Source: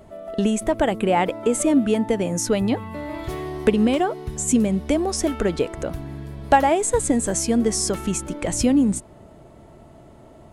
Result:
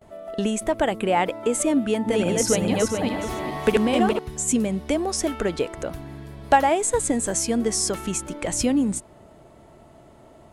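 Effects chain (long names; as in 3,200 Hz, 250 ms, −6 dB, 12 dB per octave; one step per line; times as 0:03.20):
0:01.84–0:04.19: feedback delay that plays each chunk backwards 209 ms, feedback 53%, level 0 dB
noise gate with hold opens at −39 dBFS
low-shelf EQ 390 Hz −5.5 dB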